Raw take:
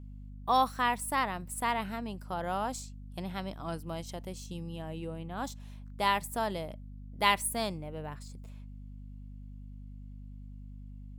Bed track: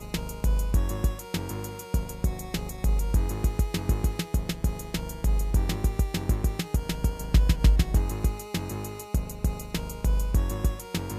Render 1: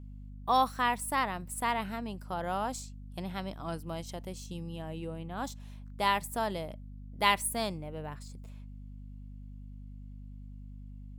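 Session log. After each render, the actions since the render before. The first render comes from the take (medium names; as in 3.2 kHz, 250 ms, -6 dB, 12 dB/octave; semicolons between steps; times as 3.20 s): no audible change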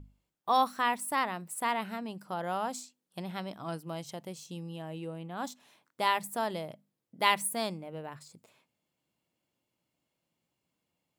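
hum notches 50/100/150/200/250 Hz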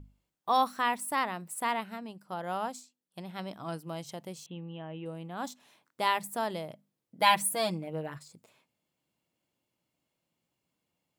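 1.80–3.39 s: upward expansion, over -46 dBFS; 4.46–5.06 s: elliptic low-pass 3.3 kHz; 7.21–8.18 s: comb 6.2 ms, depth 100%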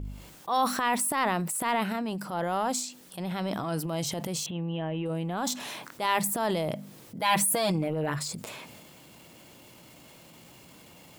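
transient shaper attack -10 dB, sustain +7 dB; level flattener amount 50%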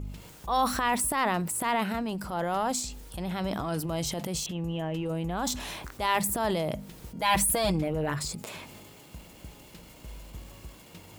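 add bed track -20 dB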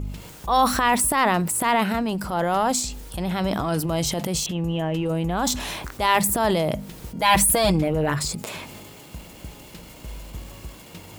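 trim +7 dB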